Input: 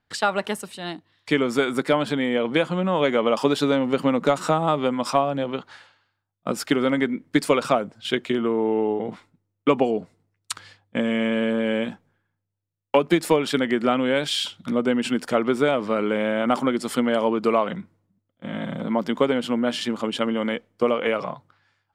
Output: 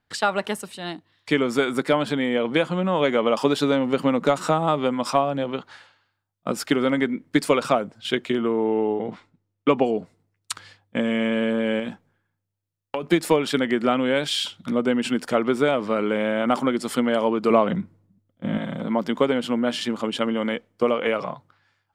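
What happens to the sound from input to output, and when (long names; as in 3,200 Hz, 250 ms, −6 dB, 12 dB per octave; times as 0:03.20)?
0:08.65–0:09.86: low-pass filter 6,500 Hz
0:11.79–0:13.03: downward compressor, threshold −23 dBFS
0:17.50–0:18.58: low-shelf EQ 450 Hz +8.5 dB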